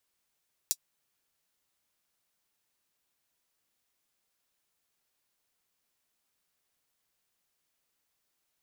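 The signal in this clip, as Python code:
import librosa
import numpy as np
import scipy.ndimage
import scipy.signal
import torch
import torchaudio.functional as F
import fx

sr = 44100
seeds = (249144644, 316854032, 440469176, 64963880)

y = fx.drum_hat(sr, length_s=0.24, from_hz=5400.0, decay_s=0.06)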